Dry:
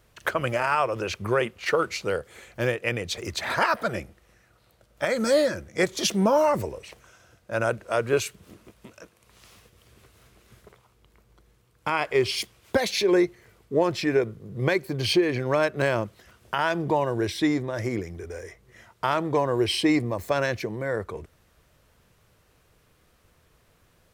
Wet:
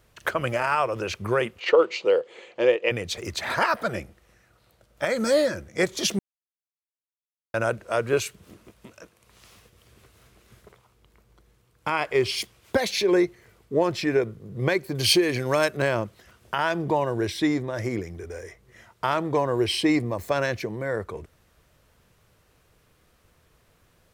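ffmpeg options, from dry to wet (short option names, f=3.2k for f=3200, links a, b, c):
-filter_complex "[0:a]asplit=3[a][b][c];[a]afade=t=out:st=1.59:d=0.02[d];[b]highpass=320,equalizer=f=350:t=q:w=4:g=6,equalizer=f=500:t=q:w=4:g=9,equalizer=f=940:t=q:w=4:g=4,equalizer=f=1.5k:t=q:w=4:g=-6,equalizer=f=2.9k:t=q:w=4:g=6,equalizer=f=5.6k:t=q:w=4:g=-7,lowpass=f=6.2k:w=0.5412,lowpass=f=6.2k:w=1.3066,afade=t=in:st=1.59:d=0.02,afade=t=out:st=2.9:d=0.02[e];[c]afade=t=in:st=2.9:d=0.02[f];[d][e][f]amix=inputs=3:normalize=0,asettb=1/sr,asplit=3[g][h][i];[g]atrim=end=14.954[j];[h]atrim=start=14.95:end=15.77,asetpts=PTS-STARTPTS,afade=t=in:d=0.004:c=qsin,afade=t=out:st=0.816:d=0.004:c=qsin,equalizer=f=12k:t=o:w=2.1:g=13[k];[i]atrim=start=15.766[l];[j][k]acrossfade=d=0.004:c1=hsin:c2=qsin[m];[m][l]acrossfade=d=0.004:c1=qsin:c2=hsin,asplit=3[n][o][p];[n]atrim=end=6.19,asetpts=PTS-STARTPTS,afade=t=out:st=6.186:d=0.004:c=hsin[q];[o]atrim=start=6.19:end=7.54,asetpts=PTS-STARTPTS,volume=0[r];[p]atrim=start=7.54,asetpts=PTS-STARTPTS,afade=t=in:d=0.004:c=hsin[s];[q][r][s]concat=n=3:v=0:a=1"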